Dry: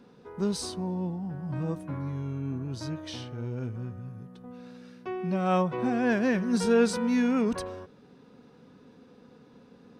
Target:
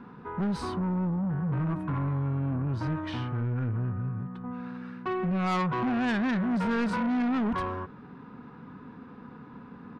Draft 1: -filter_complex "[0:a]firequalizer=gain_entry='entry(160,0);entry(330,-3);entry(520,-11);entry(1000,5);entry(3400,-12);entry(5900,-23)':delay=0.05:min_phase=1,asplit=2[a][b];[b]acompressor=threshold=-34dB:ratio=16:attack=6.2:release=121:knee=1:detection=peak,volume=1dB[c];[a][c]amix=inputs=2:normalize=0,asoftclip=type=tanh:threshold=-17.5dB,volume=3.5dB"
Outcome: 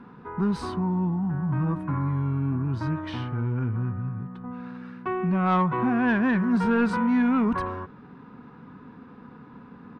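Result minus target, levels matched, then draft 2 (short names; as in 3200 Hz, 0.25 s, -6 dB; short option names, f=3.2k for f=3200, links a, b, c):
soft clip: distortion -12 dB
-filter_complex "[0:a]firequalizer=gain_entry='entry(160,0);entry(330,-3);entry(520,-11);entry(1000,5);entry(3400,-12);entry(5900,-23)':delay=0.05:min_phase=1,asplit=2[a][b];[b]acompressor=threshold=-34dB:ratio=16:attack=6.2:release=121:knee=1:detection=peak,volume=1dB[c];[a][c]amix=inputs=2:normalize=0,asoftclip=type=tanh:threshold=-28dB,volume=3.5dB"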